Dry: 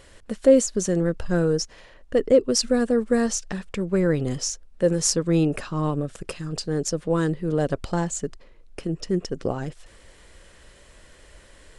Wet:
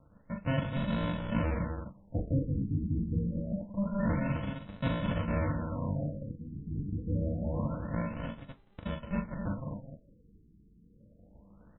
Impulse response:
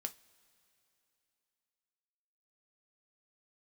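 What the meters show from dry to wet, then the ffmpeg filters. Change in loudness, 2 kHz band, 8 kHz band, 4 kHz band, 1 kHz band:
-10.5 dB, -7.5 dB, under -40 dB, -17.0 dB, -6.5 dB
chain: -filter_complex "[0:a]aresample=16000,acrusher=samples=40:mix=1:aa=0.000001,aresample=44100,lowshelf=f=61:g=-9.5,asoftclip=type=tanh:threshold=0.158,aecho=1:1:40.82|172|256.6:0.562|0.251|0.501[s0];[1:a]atrim=start_sample=2205,atrim=end_sample=6174[s1];[s0][s1]afir=irnorm=-1:irlink=0,afftfilt=real='re*lt(b*sr/1024,430*pow(4100/430,0.5+0.5*sin(2*PI*0.26*pts/sr)))':imag='im*lt(b*sr/1024,430*pow(4100/430,0.5+0.5*sin(2*PI*0.26*pts/sr)))':win_size=1024:overlap=0.75,volume=0.596"

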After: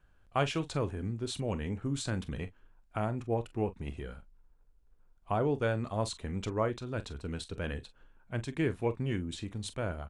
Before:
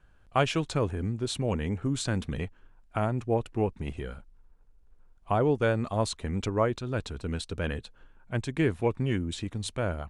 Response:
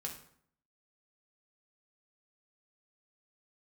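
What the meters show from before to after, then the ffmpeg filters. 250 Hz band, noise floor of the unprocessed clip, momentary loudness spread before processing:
-5.0 dB, -58 dBFS, 9 LU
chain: -af "aecho=1:1:28|43:0.126|0.188,volume=0.562"

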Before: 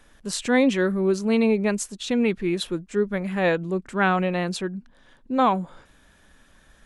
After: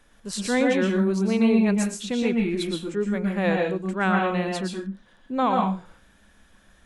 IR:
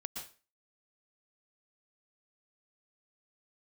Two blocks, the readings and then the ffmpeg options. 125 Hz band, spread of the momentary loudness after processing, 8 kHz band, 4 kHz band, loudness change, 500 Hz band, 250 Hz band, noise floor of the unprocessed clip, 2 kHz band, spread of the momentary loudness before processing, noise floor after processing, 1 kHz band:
+1.5 dB, 11 LU, -1.5 dB, -1.0 dB, -0.5 dB, -1.5 dB, +1.0 dB, -57 dBFS, -1.5 dB, 9 LU, -58 dBFS, -0.5 dB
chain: -filter_complex "[1:a]atrim=start_sample=2205,afade=t=out:st=0.34:d=0.01,atrim=end_sample=15435[s0];[0:a][s0]afir=irnorm=-1:irlink=0"

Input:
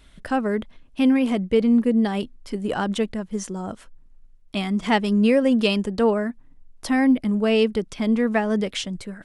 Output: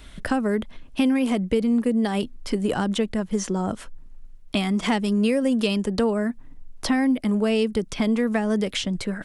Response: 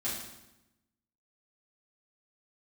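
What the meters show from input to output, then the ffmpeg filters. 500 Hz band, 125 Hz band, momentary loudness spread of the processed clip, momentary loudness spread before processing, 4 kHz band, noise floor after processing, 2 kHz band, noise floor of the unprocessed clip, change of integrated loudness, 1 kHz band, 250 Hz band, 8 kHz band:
-2.0 dB, +0.5 dB, 7 LU, 13 LU, 0.0 dB, -44 dBFS, -1.5 dB, -51 dBFS, -1.5 dB, -2.5 dB, -1.5 dB, +3.0 dB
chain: -filter_complex "[0:a]acrossover=split=320|6300[s0][s1][s2];[s0]acompressor=threshold=0.0224:ratio=4[s3];[s1]acompressor=threshold=0.02:ratio=4[s4];[s2]acompressor=threshold=0.00355:ratio=4[s5];[s3][s4][s5]amix=inputs=3:normalize=0,volume=2.51"

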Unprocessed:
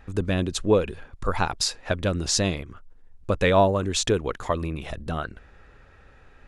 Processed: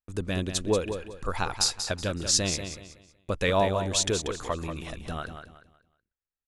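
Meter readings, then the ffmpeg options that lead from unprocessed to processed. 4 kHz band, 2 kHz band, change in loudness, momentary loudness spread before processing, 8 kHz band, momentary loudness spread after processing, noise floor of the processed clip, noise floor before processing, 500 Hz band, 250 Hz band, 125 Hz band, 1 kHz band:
0.0 dB, -3.0 dB, -3.0 dB, 14 LU, +2.0 dB, 13 LU, under -85 dBFS, -52 dBFS, -5.0 dB, -5.5 dB, -5.0 dB, -4.5 dB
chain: -filter_complex "[0:a]agate=range=0.00631:threshold=0.0112:ratio=16:detection=peak,highshelf=f=3400:g=9,asplit=2[s0][s1];[s1]aecho=0:1:186|372|558|744:0.376|0.117|0.0361|0.0112[s2];[s0][s2]amix=inputs=2:normalize=0,volume=0.501"

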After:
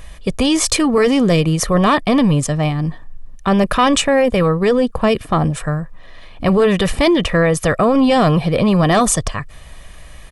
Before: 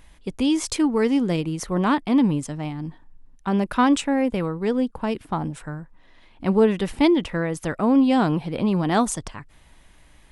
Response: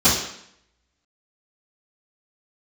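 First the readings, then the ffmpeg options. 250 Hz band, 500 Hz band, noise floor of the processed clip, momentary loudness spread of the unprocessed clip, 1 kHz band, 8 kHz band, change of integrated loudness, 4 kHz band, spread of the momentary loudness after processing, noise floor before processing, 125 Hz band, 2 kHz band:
+4.5 dB, +9.5 dB, -37 dBFS, 12 LU, +8.0 dB, +12.5 dB, +7.0 dB, +11.5 dB, 9 LU, -53 dBFS, +10.5 dB, +10.0 dB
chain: -af "aecho=1:1:1.7:0.51,apsyclip=11.2,volume=0.376"

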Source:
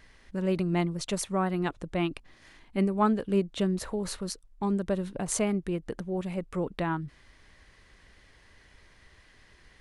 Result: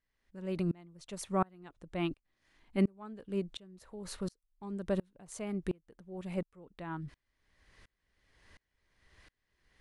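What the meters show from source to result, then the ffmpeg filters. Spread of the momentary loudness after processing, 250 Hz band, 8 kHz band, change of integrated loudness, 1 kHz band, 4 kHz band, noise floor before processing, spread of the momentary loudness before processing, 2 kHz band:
16 LU, -8.0 dB, -13.5 dB, -8.0 dB, -9.0 dB, -9.5 dB, -59 dBFS, 8 LU, -10.0 dB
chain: -af "aeval=exprs='val(0)*pow(10,-32*if(lt(mod(-1.4*n/s,1),2*abs(-1.4)/1000),1-mod(-1.4*n/s,1)/(2*abs(-1.4)/1000),(mod(-1.4*n/s,1)-2*abs(-1.4)/1000)/(1-2*abs(-1.4)/1000))/20)':c=same"

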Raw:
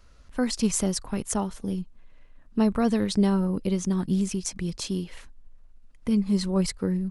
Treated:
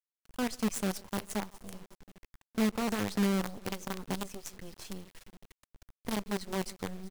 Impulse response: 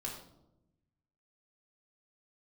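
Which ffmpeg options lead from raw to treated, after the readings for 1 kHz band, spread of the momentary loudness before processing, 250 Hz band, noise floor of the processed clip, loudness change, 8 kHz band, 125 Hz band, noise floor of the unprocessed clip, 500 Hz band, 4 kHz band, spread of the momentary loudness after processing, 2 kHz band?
-3.5 dB, 10 LU, -9.5 dB, under -85 dBFS, -8.0 dB, -10.0 dB, -11.0 dB, -52 dBFS, -7.5 dB, -6.0 dB, 16 LU, 0.0 dB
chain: -filter_complex "[0:a]asplit=2[s0][s1];[s1]aecho=0:1:379:0.112[s2];[s0][s2]amix=inputs=2:normalize=0,flanger=delay=7.2:depth=3.3:regen=45:speed=0.48:shape=triangular,asplit=2[s3][s4];[s4]adelay=140,highpass=300,lowpass=3400,asoftclip=type=hard:threshold=0.0708,volume=0.2[s5];[s3][s5]amix=inputs=2:normalize=0,acrusher=bits=5:dc=4:mix=0:aa=0.000001,volume=0.531"

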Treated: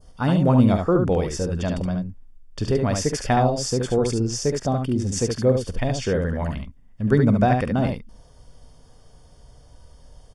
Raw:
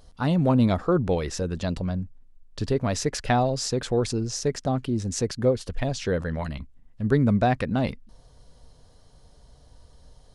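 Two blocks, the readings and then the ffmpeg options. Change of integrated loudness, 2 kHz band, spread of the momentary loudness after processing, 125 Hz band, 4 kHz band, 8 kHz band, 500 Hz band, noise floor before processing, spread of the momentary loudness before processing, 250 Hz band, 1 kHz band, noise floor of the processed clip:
+3.5 dB, +2.0 dB, 11 LU, +4.0 dB, +1.5 dB, +3.0 dB, +3.5 dB, -54 dBFS, 10 LU, +3.5 dB, +3.5 dB, -50 dBFS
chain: -filter_complex "[0:a]adynamicequalizer=threshold=0.00794:dfrequency=2700:dqfactor=0.71:tfrequency=2700:tqfactor=0.71:attack=5:release=100:ratio=0.375:range=2.5:mode=cutabove:tftype=bell,asuperstop=centerf=4000:order=12:qfactor=7.8,asplit=2[s0][s1];[s1]aecho=0:1:47|71:0.168|0.562[s2];[s0][s2]amix=inputs=2:normalize=0,volume=1.33"

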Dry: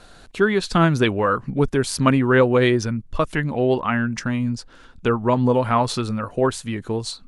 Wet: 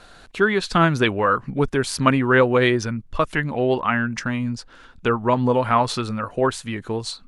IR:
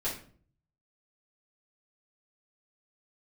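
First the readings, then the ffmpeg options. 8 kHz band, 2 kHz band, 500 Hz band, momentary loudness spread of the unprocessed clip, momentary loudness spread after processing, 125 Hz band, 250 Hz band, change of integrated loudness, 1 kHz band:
-1.5 dB, +2.5 dB, -1.0 dB, 10 LU, 11 LU, -2.5 dB, -2.0 dB, -0.5 dB, +1.5 dB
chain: -af "equalizer=f=1700:w=0.41:g=5,volume=0.75"

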